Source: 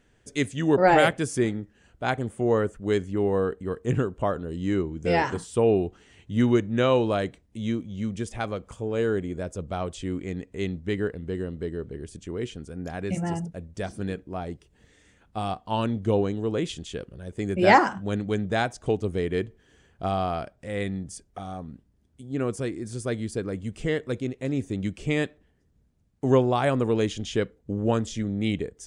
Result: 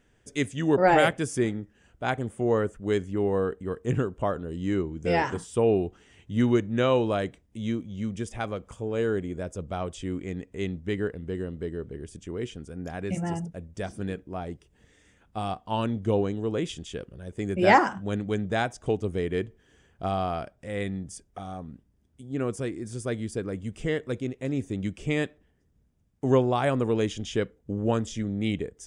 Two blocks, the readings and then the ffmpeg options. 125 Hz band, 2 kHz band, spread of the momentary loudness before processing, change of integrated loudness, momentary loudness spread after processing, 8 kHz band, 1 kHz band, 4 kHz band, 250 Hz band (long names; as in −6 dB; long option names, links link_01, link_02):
−1.5 dB, −1.5 dB, 13 LU, −1.5 dB, 13 LU, −1.5 dB, −1.5 dB, −2.0 dB, −1.5 dB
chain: -af "bandreject=frequency=4200:width=8.3,volume=-1.5dB"